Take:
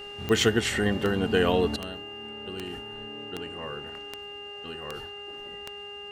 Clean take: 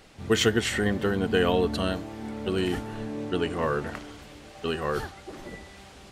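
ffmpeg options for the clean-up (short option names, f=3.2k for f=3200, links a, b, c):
-af "adeclick=t=4,bandreject=f=408.4:t=h:w=4,bandreject=f=816.8:t=h:w=4,bandreject=f=1.2252k:t=h:w=4,bandreject=f=1.6336k:t=h:w=4,bandreject=f=2.042k:t=h:w=4,bandreject=f=2.8k:w=30,asetnsamples=n=441:p=0,asendcmd='1.76 volume volume 11.5dB',volume=0dB"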